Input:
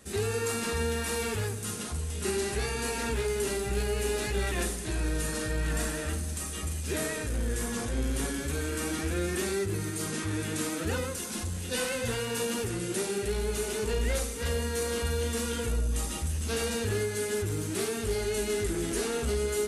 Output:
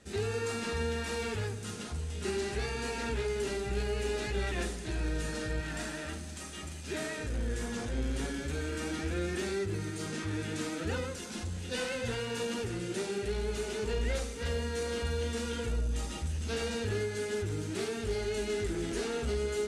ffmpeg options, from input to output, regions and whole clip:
-filter_complex "[0:a]asettb=1/sr,asplit=3[a][b][c];[a]atrim=end=5.604[d];[b]atrim=start=5.6:end=7.19,asetpts=PTS-STARTPTS,afade=t=in:d=0.004:c=qsin,afade=t=out:st=1.586:d=0.004:c=qsin,highpass=f=160:p=1,bandreject=f=470:w=9.4,acrusher=bits=3:mode=log:mix=0:aa=0.000001[e];[c]atrim=start=7.186[f];[d][e]acrossfade=d=0.004:c1=hsin:c2=qsin[g];[g][f]acrossfade=d=0.004:c1=qsin:c2=hsin,lowpass=6.2k,bandreject=f=1.1k:w=12,volume=-3dB"

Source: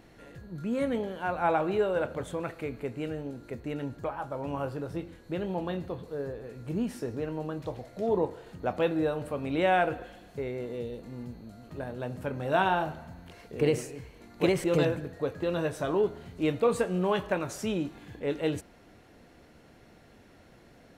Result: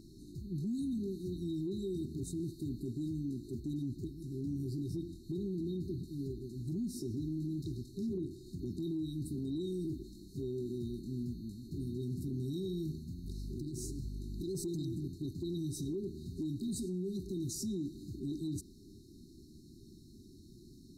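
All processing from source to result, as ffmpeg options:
-filter_complex "[0:a]asettb=1/sr,asplit=3[a][b][c];[a]atrim=end=13.244[d];[b]atrim=start=13.24:end=14.55,asetpts=PTS-STARTPTS,afade=t=in:d=0.004:c=qsin,afade=t=out:st=1.306:d=0.004:c=qsin,aeval=exprs='val(0)+0.00708*(sin(2*PI*50*n/s)+sin(2*PI*2*50*n/s)/2+sin(2*PI*3*50*n/s)/3+sin(2*PI*4*50*n/s)/4+sin(2*PI*5*50*n/s)/5)':c=same,acompressor=threshold=-36dB:ratio=6:attack=3.2:release=140:knee=1:detection=peak,asoftclip=type=hard:threshold=-33dB[e];[c]atrim=start=14.546[f];[d][e]acrossfade=d=0.004:c1=hsin:c2=qsin[g];[g][f]acrossfade=d=0.004:c1=qsin:c2=hsin,afftfilt=real='re*(1-between(b*sr/4096,400,3700))':imag='im*(1-between(b*sr/4096,400,3700))':win_size=4096:overlap=0.75,acompressor=threshold=-33dB:ratio=6,alimiter=level_in=9.5dB:limit=-24dB:level=0:latency=1:release=13,volume=-9.5dB,volume=2.5dB"

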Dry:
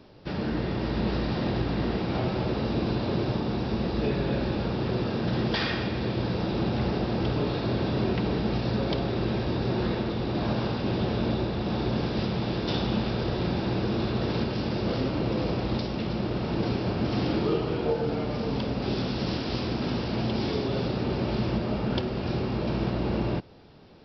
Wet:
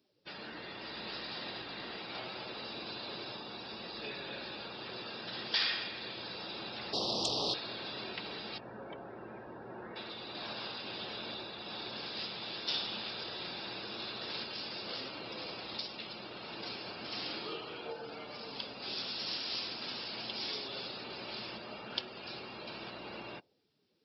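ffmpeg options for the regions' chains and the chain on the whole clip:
-filter_complex "[0:a]asettb=1/sr,asplit=3[a][b][c];[a]atrim=end=6.934[d];[b]atrim=start=6.93:end=7.54,asetpts=PTS-STARTPTS,afade=t=in:d=0.004:c=qsin,afade=t=out:st=0.606:d=0.004:c=qsin,aeval=exprs='0.178*sin(PI/2*2.82*val(0)/0.178)':c=same,asuperstop=centerf=1800:order=4:qfactor=0.65[e];[c]atrim=start=7.536[f];[d][e]acrossfade=d=0.004:c1=hsin:c2=qsin[g];[g][f]acrossfade=d=0.004:c1=qsin:c2=hsin,asettb=1/sr,asplit=3[h][i][j];[h]atrim=end=8.584[k];[i]atrim=start=8.58:end=9.96,asetpts=PTS-STARTPTS,afade=t=in:d=0.004:c=qsin,afade=t=out:st=1.376:d=0.004:c=qsin,bandreject=f=1.2k:w=20,acrossover=split=2600[l][m];[m]acompressor=threshold=-58dB:ratio=4:attack=1:release=60[n];[l][n]amix=inputs=2:normalize=0,highshelf=f=3.2k:g=-12[o];[j]atrim=start=9.956[p];[k][o]acrossfade=d=0.004:c1=hsin:c2=qsin[q];[q][p]acrossfade=d=0.004:c1=qsin:c2=hsin,afftdn=nr=19:nf=-44,aderivative,volume=7dB"

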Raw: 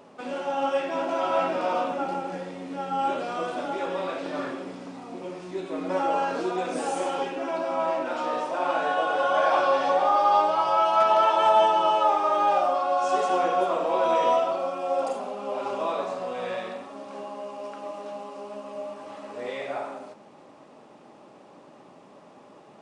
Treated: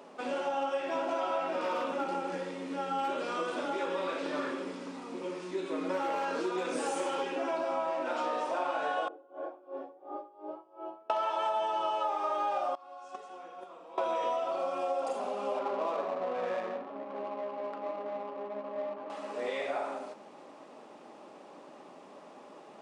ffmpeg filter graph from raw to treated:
-filter_complex "[0:a]asettb=1/sr,asplit=3[a][b][c];[a]atrim=end=1.594[d];[b]atrim=start=1.59:end=7.36,asetpts=PTS-STARTPTS,afade=t=in:d=0.004:c=qsin,afade=t=out:st=5.766:d=0.004:c=qsin,asoftclip=type=hard:threshold=-20.5dB,equalizer=f=710:w=6.5:g=-12.5[e];[c]atrim=start=7.356[f];[d][e]acrossfade=d=0.004:c1=hsin:c2=qsin[g];[g][f]acrossfade=d=0.004:c1=qsin:c2=hsin,asettb=1/sr,asplit=3[h][i][j];[h]atrim=end=9.084[k];[i]atrim=start=9.08:end=11.1,asetpts=PTS-STARTPTS,afade=t=in:d=0.004:c=qsin,afade=t=out:st=2.016:d=0.004:c=qsin,bandpass=f=340:t=q:w=4.1,aeval=exprs='val(0)*pow(10,-22*(0.5-0.5*cos(2*PI*2.8*n/s))/20)':c=same[l];[j]atrim=start=11.096[m];[k][l]acrossfade=d=0.004:c1=hsin:c2=qsin[n];[n][m]acrossfade=d=0.004:c1=qsin:c2=hsin,asettb=1/sr,asplit=3[o][p][q];[o]atrim=end=12.754[r];[p]atrim=start=12.75:end=13.98,asetpts=PTS-STARTPTS,afade=t=in:d=0.004:c=qsin,afade=t=out:st=1.226:d=0.004:c=qsin,agate=range=-22dB:threshold=-19dB:ratio=16:release=100:detection=peak,bandreject=f=610:w=5.9,asubboost=boost=3.5:cutoff=240[s];[q]atrim=start=13.976[t];[r][s]acrossfade=d=0.004:c1=hsin:c2=qsin[u];[u][t]acrossfade=d=0.004:c1=qsin:c2=hsin,asettb=1/sr,asplit=3[v][w][x];[v]atrim=end=15.594[y];[w]atrim=start=15.59:end=19.1,asetpts=PTS-STARTPTS,afade=t=in:d=0.004:c=qsin,afade=t=out:st=3.506:d=0.004:c=qsin,adynamicsmooth=sensitivity=7:basefreq=540,highshelf=f=4k:g=-10.5[z];[x]atrim=start=19.096[aa];[y][z]acrossfade=d=0.004:c1=hsin:c2=qsin[ab];[ab][aa]acrossfade=d=0.004:c1=qsin:c2=hsin,highpass=240,acompressor=threshold=-29dB:ratio=6"

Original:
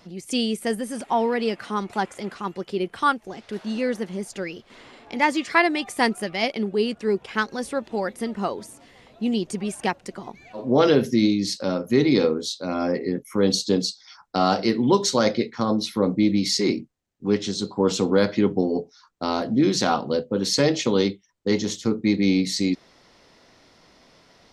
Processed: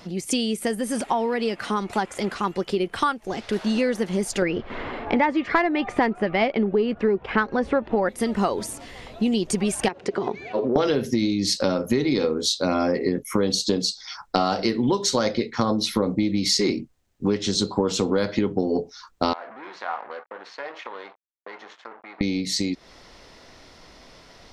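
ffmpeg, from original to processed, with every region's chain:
-filter_complex "[0:a]asettb=1/sr,asplit=3[a][b][c];[a]atrim=end=4.424[d];[b]atrim=start=4.42:end=8.09,asetpts=PTS-STARTPTS,afade=t=in:d=0.004:c=qsin,afade=t=out:st=3.666:d=0.004:c=qsin,lowpass=1.9k,acontrast=68[e];[c]atrim=start=8.086[f];[d][e]acrossfade=d=0.004:c1=hsin:c2=qsin[g];[g][f]acrossfade=d=0.004:c1=qsin:c2=hsin,asettb=1/sr,asplit=3[h][i][j];[h]atrim=end=9.884[k];[i]atrim=start=9.88:end=10.76,asetpts=PTS-STARTPTS,afade=t=in:d=0.004:c=qsin,afade=t=out:st=0.876:d=0.004:c=qsin,equalizer=f=410:t=o:w=0.38:g=13,acompressor=threshold=-27dB:ratio=10:attack=3.2:release=140:knee=1:detection=peak,highpass=120,lowpass=4.2k[l];[j]atrim=start=10.756[m];[k][l]acrossfade=d=0.004:c1=hsin:c2=qsin[n];[n][m]acrossfade=d=0.004:c1=qsin:c2=hsin,asettb=1/sr,asplit=3[o][p][q];[o]atrim=end=19.334[r];[p]atrim=start=19.33:end=22.21,asetpts=PTS-STARTPTS,afade=t=in:d=0.004:c=qsin,afade=t=out:st=2.876:d=0.004:c=qsin,acompressor=threshold=-31dB:ratio=4:attack=3.2:release=140:knee=1:detection=peak,aeval=exprs='sgn(val(0))*max(abs(val(0))-0.0075,0)':c=same,asuperpass=centerf=1200:order=4:qfactor=0.87[s];[q]atrim=start=22.206[t];[r][s]acrossfade=d=0.004:c1=hsin:c2=qsin[u];[u][t]acrossfade=d=0.004:c1=qsin:c2=hsin,acompressor=threshold=-27dB:ratio=12,asubboost=boost=2.5:cutoff=83,dynaudnorm=f=200:g=31:m=3dB,volume=7dB"

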